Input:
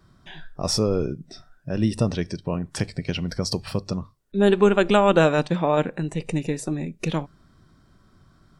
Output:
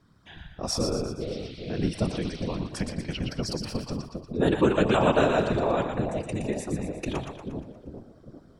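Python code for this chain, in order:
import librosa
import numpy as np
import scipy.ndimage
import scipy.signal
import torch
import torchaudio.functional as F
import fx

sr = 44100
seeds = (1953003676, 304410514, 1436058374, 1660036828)

y = fx.dmg_noise_band(x, sr, seeds[0], low_hz=2100.0, high_hz=4500.0, level_db=-45.0, at=(1.2, 2.57), fade=0.02)
y = fx.echo_split(y, sr, split_hz=650.0, low_ms=400, high_ms=118, feedback_pct=52, wet_db=-5.5)
y = fx.whisperise(y, sr, seeds[1])
y = y * librosa.db_to_amplitude(-5.5)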